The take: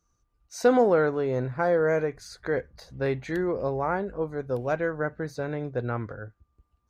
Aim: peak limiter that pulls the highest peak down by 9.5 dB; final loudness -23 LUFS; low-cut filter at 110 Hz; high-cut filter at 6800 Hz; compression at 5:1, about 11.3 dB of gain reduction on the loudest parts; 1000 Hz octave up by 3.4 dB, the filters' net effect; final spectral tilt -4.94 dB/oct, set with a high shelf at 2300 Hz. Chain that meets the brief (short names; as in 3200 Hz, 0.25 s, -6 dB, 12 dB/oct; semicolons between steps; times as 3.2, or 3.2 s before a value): HPF 110 Hz; LPF 6800 Hz; bell 1000 Hz +3.5 dB; high shelf 2300 Hz +7 dB; compressor 5:1, threshold -27 dBFS; gain +11.5 dB; limiter -12 dBFS